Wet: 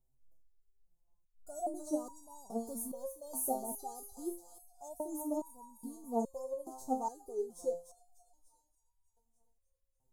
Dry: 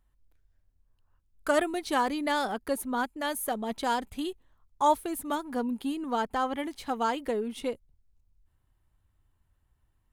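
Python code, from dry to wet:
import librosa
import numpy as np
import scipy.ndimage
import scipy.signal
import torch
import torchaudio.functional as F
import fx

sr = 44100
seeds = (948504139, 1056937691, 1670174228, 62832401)

y = fx.law_mismatch(x, sr, coded='mu', at=(2.56, 3.55))
y = scipy.signal.sosfilt(scipy.signal.cheby1(3, 1.0, [740.0, 6300.0], 'bandstop', fs=sr, output='sos'), y)
y = fx.low_shelf(y, sr, hz=330.0, db=-4.0)
y = fx.echo_wet_highpass(y, sr, ms=296, feedback_pct=60, hz=1700.0, wet_db=-7.0)
y = fx.resonator_held(y, sr, hz=2.4, low_hz=130.0, high_hz=950.0)
y = y * 10.0 ** (9.0 / 20.0)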